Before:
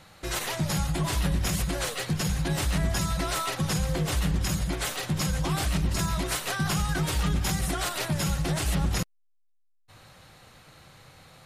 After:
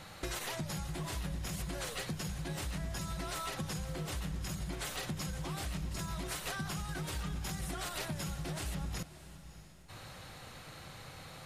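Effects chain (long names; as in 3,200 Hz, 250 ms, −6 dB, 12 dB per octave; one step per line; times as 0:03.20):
downward compressor 16 to 1, threshold −38 dBFS, peak gain reduction 17 dB
feedback delay with all-pass diffusion 627 ms, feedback 40%, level −14.5 dB
level +2.5 dB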